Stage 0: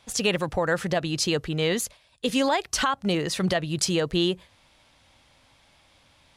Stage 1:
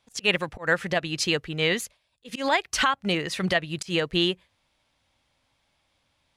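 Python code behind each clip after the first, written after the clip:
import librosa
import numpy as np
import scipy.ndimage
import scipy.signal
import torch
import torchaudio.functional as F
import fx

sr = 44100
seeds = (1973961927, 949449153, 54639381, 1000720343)

y = fx.dynamic_eq(x, sr, hz=2200.0, q=1.1, threshold_db=-43.0, ratio=4.0, max_db=8)
y = fx.auto_swell(y, sr, attack_ms=107.0)
y = fx.upward_expand(y, sr, threshold_db=-41.0, expansion=1.5)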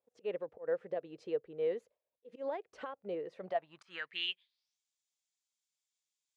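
y = fx.filter_sweep_bandpass(x, sr, from_hz=480.0, to_hz=7100.0, start_s=3.34, end_s=4.81, q=4.4)
y = y * librosa.db_to_amplitude(-4.0)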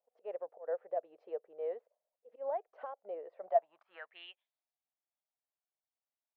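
y = fx.ladder_bandpass(x, sr, hz=760.0, resonance_pct=60)
y = y * librosa.db_to_amplitude(9.0)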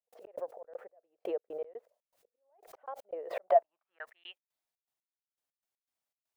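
y = fx.step_gate(x, sr, bpm=120, pattern='.x.xx.x...x', floor_db=-60.0, edge_ms=4.5)
y = fx.pre_swell(y, sr, db_per_s=82.0)
y = y * librosa.db_to_amplitude(4.0)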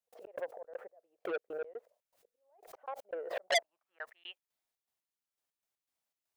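y = fx.transformer_sat(x, sr, knee_hz=3900.0)
y = y * librosa.db_to_amplitude(1.0)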